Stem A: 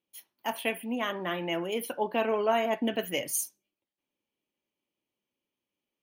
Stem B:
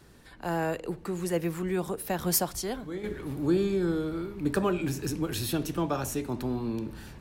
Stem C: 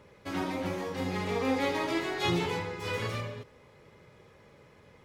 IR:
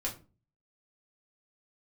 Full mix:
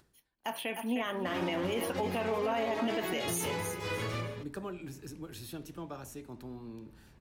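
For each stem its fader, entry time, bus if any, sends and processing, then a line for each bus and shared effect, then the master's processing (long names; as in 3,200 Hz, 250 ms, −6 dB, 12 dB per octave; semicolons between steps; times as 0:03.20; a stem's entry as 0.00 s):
+1.0 dB, 0.00 s, bus A, no send, echo send −11.5 dB, high-shelf EQ 11,000 Hz −5.5 dB
−13.5 dB, 0.00 s, no bus, no send, no echo send, upward compression, threshold −49 dBFS; automatic ducking −23 dB, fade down 0.35 s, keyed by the first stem
−1.0 dB, 1.00 s, bus A, no send, no echo send, brickwall limiter −24.5 dBFS, peak gain reduction 8 dB
bus A: 0.0 dB, noise gate −44 dBFS, range −16 dB; downward compressor 2 to 1, threshold −28 dBFS, peak gain reduction 5 dB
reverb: not used
echo: repeating echo 306 ms, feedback 23%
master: brickwall limiter −23 dBFS, peak gain reduction 7 dB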